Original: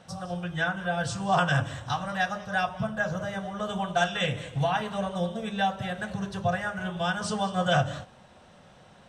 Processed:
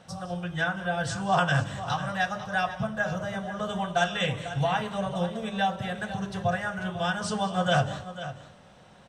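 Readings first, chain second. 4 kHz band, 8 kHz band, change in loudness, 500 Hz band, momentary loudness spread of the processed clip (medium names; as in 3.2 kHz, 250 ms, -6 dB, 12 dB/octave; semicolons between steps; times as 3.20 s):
0.0 dB, 0.0 dB, 0.0 dB, 0.0 dB, 8 LU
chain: delay 496 ms -13 dB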